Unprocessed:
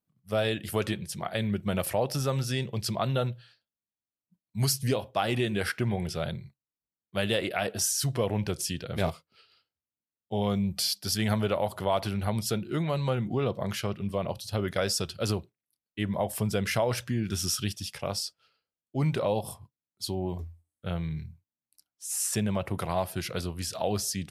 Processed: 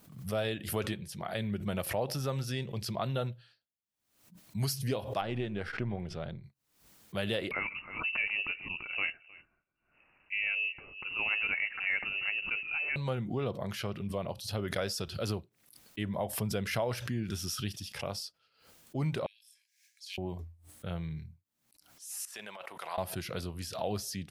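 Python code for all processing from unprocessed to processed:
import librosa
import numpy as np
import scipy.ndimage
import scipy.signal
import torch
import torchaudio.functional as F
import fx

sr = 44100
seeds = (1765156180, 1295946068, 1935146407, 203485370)

y = fx.chain(x, sr, fx.halfwave_gain(db=-3.0),
    fx.spacing_loss(db_at_10k=20), at=(5.21, 6.44))
y = fx.chain(y, sr, fx.echo_single(ms=312, db=-22.0),
    fx.freq_invert(carrier_hz=2800), at=(7.51, 12.96))
y = fx.chain(y, sr, fx.cheby_ripple_highpass(hz=1600.0, ripple_db=9),
    fx.tilt_eq(slope=-2.5),
    fx.sustainer(db_per_s=130.0), at=(19.26, 20.18))
y = fx.chain(y, sr, fx.highpass(hz=880.0, slope=12),
    fx.high_shelf(hz=5700.0, db=-4.5),
    fx.over_compress(threshold_db=-39.0, ratio=-0.5), at=(22.25, 22.98))
y = fx.dynamic_eq(y, sr, hz=7900.0, q=1.5, threshold_db=-47.0, ratio=4.0, max_db=-6)
y = fx.pre_swell(y, sr, db_per_s=92.0)
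y = y * librosa.db_to_amplitude(-5.5)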